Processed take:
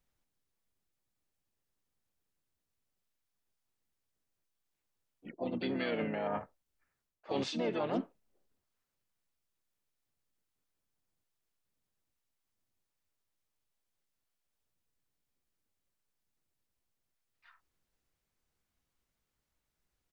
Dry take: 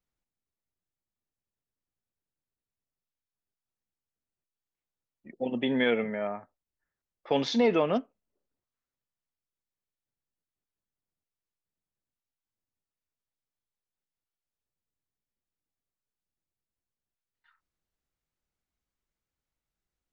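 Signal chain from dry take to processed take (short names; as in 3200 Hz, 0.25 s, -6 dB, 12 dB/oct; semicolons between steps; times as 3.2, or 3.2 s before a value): reverse; compressor 5:1, threshold -38 dBFS, peak gain reduction 16.5 dB; reverse; harmoniser -5 st -7 dB, +3 st -13 dB, +5 st -7 dB; gain +3.5 dB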